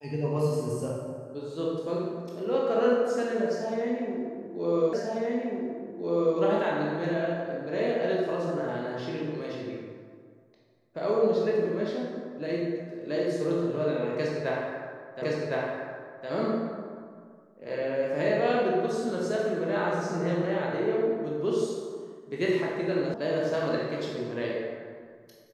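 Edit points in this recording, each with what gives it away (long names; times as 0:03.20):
0:04.93: the same again, the last 1.44 s
0:15.22: the same again, the last 1.06 s
0:23.14: cut off before it has died away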